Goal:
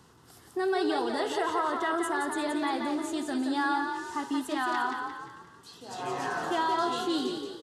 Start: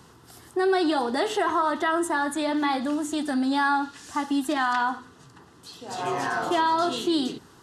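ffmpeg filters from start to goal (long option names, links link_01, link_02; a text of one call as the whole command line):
ffmpeg -i in.wav -filter_complex "[0:a]asplit=6[link_01][link_02][link_03][link_04][link_05][link_06];[link_02]adelay=175,afreqshift=34,volume=-5.5dB[link_07];[link_03]adelay=350,afreqshift=68,volume=-12.6dB[link_08];[link_04]adelay=525,afreqshift=102,volume=-19.8dB[link_09];[link_05]adelay=700,afreqshift=136,volume=-26.9dB[link_10];[link_06]adelay=875,afreqshift=170,volume=-34dB[link_11];[link_01][link_07][link_08][link_09][link_10][link_11]amix=inputs=6:normalize=0,volume=-6dB" out.wav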